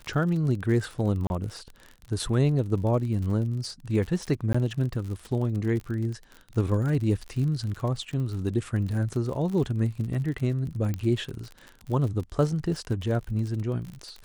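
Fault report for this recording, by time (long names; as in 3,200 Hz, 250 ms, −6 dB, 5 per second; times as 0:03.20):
surface crackle 52 per second −33 dBFS
0:01.27–0:01.30: drop-out 31 ms
0:04.53–0:04.54: drop-out 15 ms
0:10.94: click −18 dBFS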